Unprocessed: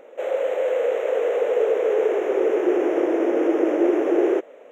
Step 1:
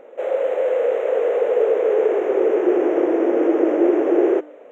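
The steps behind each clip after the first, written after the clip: high shelf 2800 Hz -10 dB; de-hum 301.4 Hz, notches 31; gain +3 dB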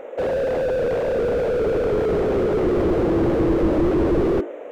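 notches 50/100/150/200/250/300/350/400/450 Hz; slew limiter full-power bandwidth 20 Hz; gain +8 dB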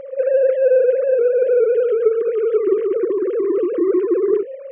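sine-wave speech; gain +3 dB

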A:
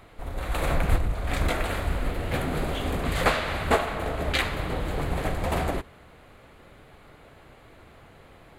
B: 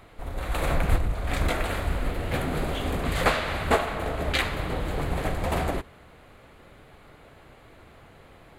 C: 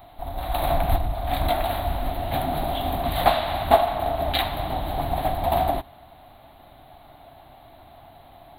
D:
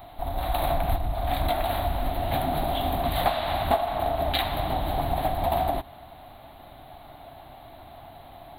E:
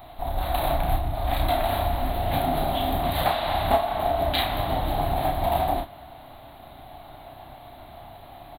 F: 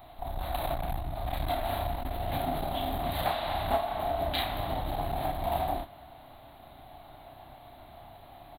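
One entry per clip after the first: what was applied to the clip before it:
nothing audible
EQ curve 130 Hz 0 dB, 190 Hz -4 dB, 280 Hz +2 dB, 480 Hz -11 dB, 700 Hz +13 dB, 1300 Hz -4 dB, 2500 Hz -4 dB, 3900 Hz +7 dB, 5800 Hz -27 dB, 13000 Hz +12 dB
compressor 2.5:1, threshold -26 dBFS, peak gain reduction 11 dB; gain +2.5 dB
early reflections 31 ms -3.5 dB, 58 ms -11 dB
core saturation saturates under 180 Hz; gain -6 dB

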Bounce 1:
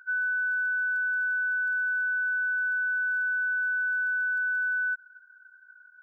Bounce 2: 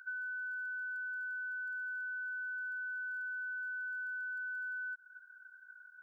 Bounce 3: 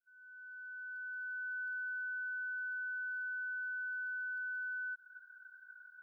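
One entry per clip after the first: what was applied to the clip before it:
HPF 1500 Hz 12 dB/oct; compressor, threshold -41 dBFS, peak gain reduction 10.5 dB; gain +1 dB
opening faded in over 1.60 s; fixed phaser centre 1500 Hz, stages 8

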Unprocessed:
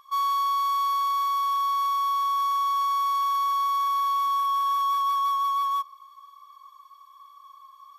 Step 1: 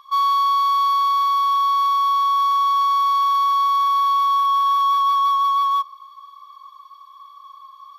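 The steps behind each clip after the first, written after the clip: graphic EQ 1000/4000/8000 Hz +7/+10/-5 dB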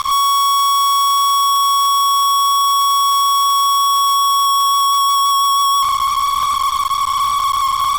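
fuzz box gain 48 dB, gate -51 dBFS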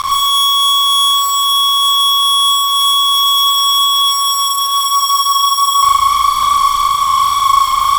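flutter echo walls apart 6.4 m, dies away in 0.78 s; gain +1 dB

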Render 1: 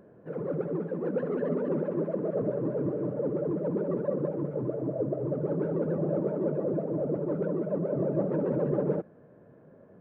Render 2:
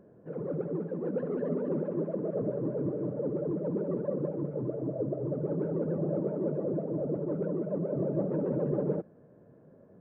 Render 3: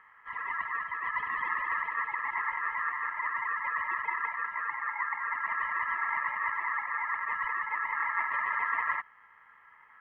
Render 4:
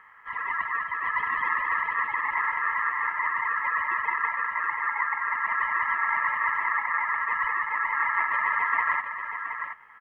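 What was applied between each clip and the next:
tilt shelf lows +4 dB; gain -5 dB
ring modulator 1500 Hz; gain +2 dB
echo 0.723 s -8 dB; gain +5 dB

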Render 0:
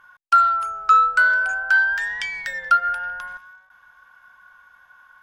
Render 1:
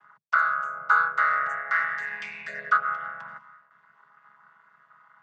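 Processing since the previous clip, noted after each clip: chord vocoder minor triad, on C#3; gain -5.5 dB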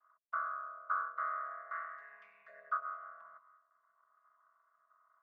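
double band-pass 860 Hz, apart 0.77 oct; gain -8.5 dB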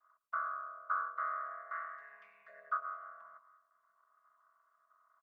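echo 0.111 s -21.5 dB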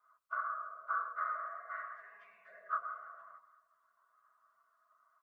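phase scrambler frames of 50 ms

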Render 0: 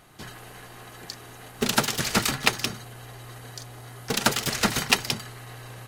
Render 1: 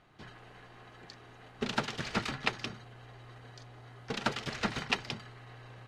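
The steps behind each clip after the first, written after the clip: LPF 3700 Hz 12 dB/oct; gain -8.5 dB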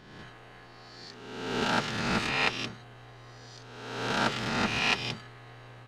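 spectral swells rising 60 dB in 1.27 s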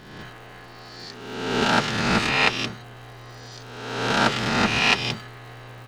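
crackle 240/s -50 dBFS; gain +7.5 dB

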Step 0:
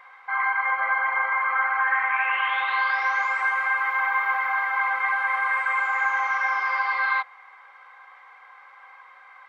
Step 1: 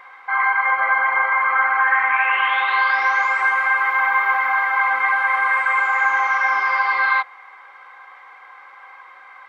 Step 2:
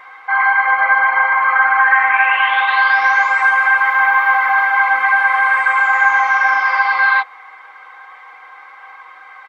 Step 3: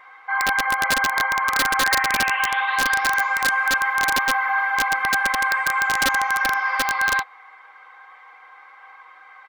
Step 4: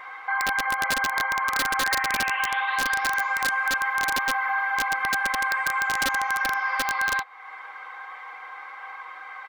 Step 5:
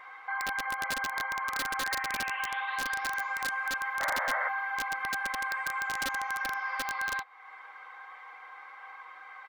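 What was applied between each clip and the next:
bell 300 Hz +9 dB 0.75 oct; gain +5.5 dB
comb 6.4 ms, depth 61%; gain +3 dB
wrapped overs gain 4.5 dB; gain -7.5 dB
compressor 2:1, threshold -38 dBFS, peak gain reduction 12 dB; gain +6.5 dB
painted sound noise, 4–4.49, 500–2200 Hz -25 dBFS; gain -8 dB

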